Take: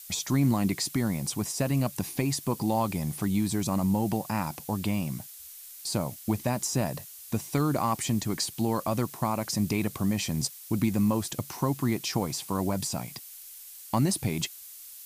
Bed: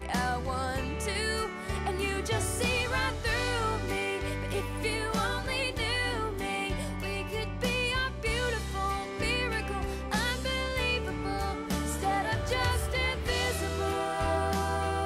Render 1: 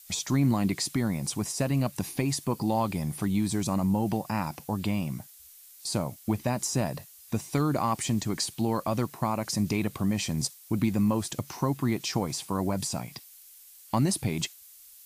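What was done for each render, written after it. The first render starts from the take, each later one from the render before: noise print and reduce 6 dB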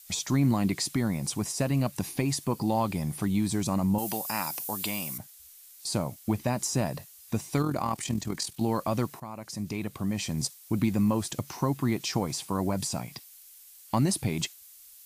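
3.98–5.18 s: RIAA curve recording; 7.62–8.61 s: AM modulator 41 Hz, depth 45%; 9.20–10.59 s: fade in, from -14 dB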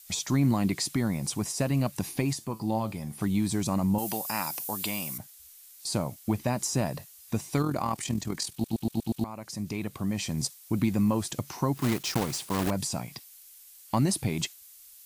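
2.33–3.21 s: feedback comb 110 Hz, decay 0.22 s; 8.52 s: stutter in place 0.12 s, 6 plays; 11.75–12.71 s: block-companded coder 3-bit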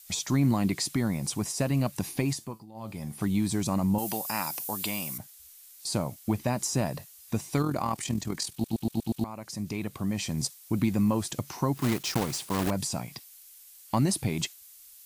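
2.37–3.03 s: dip -20.5 dB, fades 0.29 s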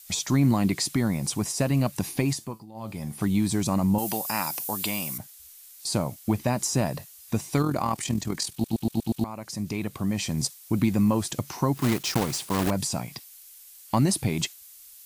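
trim +3 dB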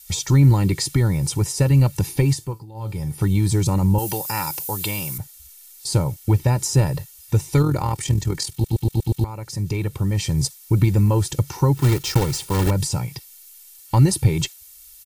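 tone controls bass +11 dB, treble +1 dB; comb 2.2 ms, depth 78%

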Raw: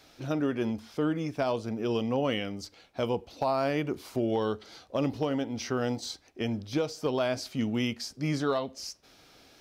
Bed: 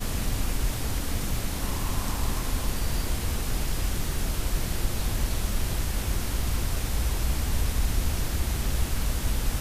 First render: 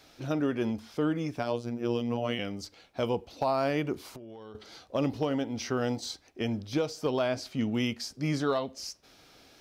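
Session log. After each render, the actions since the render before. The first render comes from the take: 1.39–2.39 s: robot voice 119 Hz; 4.00–4.55 s: compression 16:1, threshold -41 dBFS; 7.21–7.72 s: treble shelf 5.7 kHz -6 dB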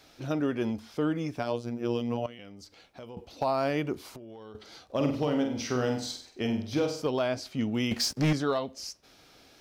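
2.26–3.17 s: compression 2.5:1, threshold -48 dBFS; 4.85–7.02 s: flutter echo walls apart 8.2 m, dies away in 0.5 s; 7.91–8.33 s: waveshaping leveller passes 3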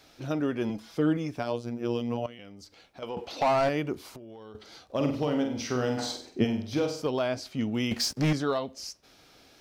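0.69–1.17 s: comb 6.1 ms; 3.02–3.69 s: overdrive pedal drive 20 dB, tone 3.2 kHz, clips at -17 dBFS; 5.97–6.43 s: peaking EQ 1.4 kHz -> 160 Hz +14 dB 2.4 oct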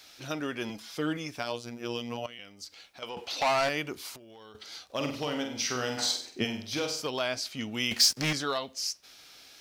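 tilt shelf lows -8 dB, about 1.1 kHz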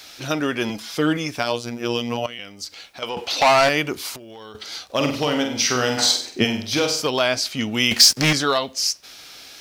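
trim +11 dB; peak limiter -3 dBFS, peak gain reduction 1.5 dB

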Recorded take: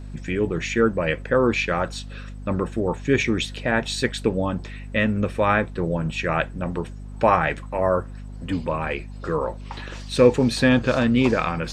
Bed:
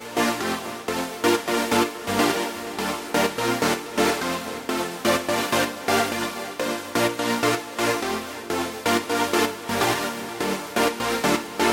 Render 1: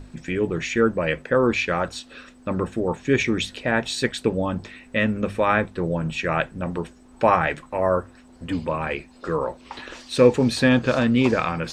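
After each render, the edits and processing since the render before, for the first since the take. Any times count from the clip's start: hum notches 50/100/150/200 Hz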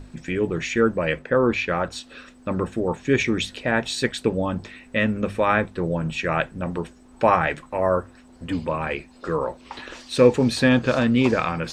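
1.19–1.92 s: low-pass 3.6 kHz 6 dB/octave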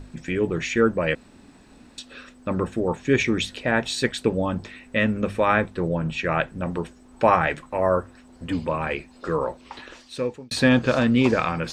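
1.15–1.98 s: room tone; 5.88–6.48 s: distance through air 52 m; 9.47–10.51 s: fade out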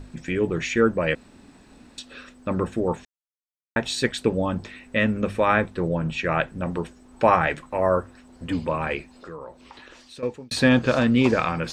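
3.05–3.76 s: mute; 9.11–10.23 s: compression 2:1, threshold -45 dBFS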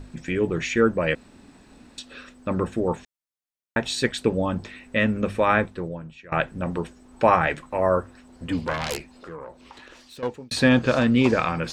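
5.61–6.32 s: fade out quadratic, to -20.5 dB; 8.57–10.38 s: self-modulated delay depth 0.49 ms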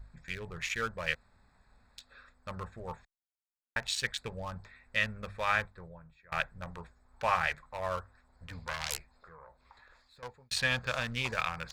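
local Wiener filter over 15 samples; amplifier tone stack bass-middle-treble 10-0-10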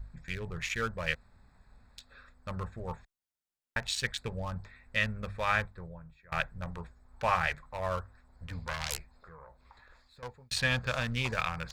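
bass shelf 290 Hz +6.5 dB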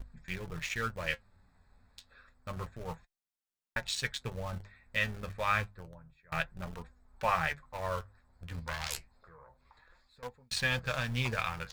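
in parallel at -10 dB: bit crusher 6-bit; on the sum: flange 0.29 Hz, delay 3.7 ms, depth 8.6 ms, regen +53%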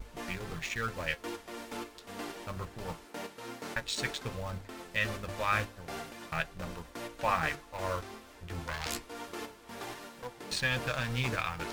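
add bed -20.5 dB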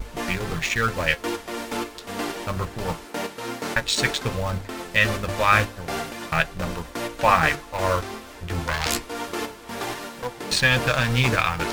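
trim +12 dB

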